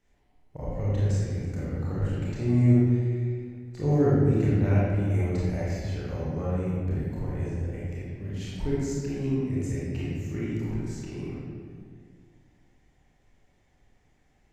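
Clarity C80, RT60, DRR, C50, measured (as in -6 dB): -1.0 dB, 1.8 s, -8.0 dB, -4.0 dB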